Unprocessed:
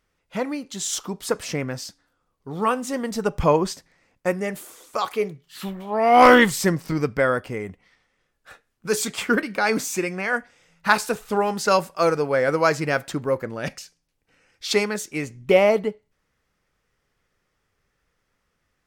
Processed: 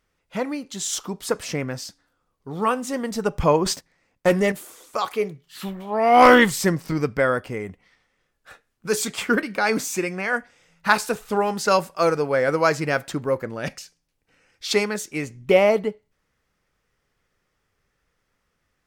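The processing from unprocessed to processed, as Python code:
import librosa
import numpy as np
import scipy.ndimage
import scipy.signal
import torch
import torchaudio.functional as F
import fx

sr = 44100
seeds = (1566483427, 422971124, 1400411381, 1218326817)

y = fx.leveller(x, sr, passes=2, at=(3.66, 4.52))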